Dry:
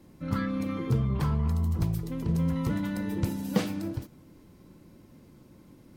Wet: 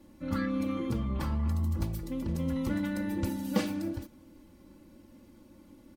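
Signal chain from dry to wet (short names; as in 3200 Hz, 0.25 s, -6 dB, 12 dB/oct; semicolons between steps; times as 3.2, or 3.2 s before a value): comb 3.5 ms, depth 71%; gain -3 dB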